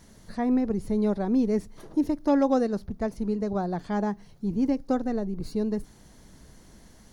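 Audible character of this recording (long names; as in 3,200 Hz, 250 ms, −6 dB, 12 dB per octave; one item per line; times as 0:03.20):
background noise floor −53 dBFS
spectral slope −6.0 dB per octave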